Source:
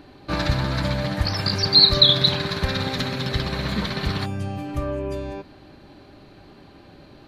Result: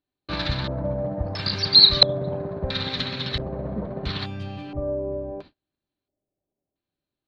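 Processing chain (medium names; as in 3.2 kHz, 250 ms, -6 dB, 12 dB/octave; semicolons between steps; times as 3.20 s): band-stop 820 Hz, Q 23; gate -40 dBFS, range -37 dB; LFO low-pass square 0.74 Hz 620–3800 Hz; trim -5 dB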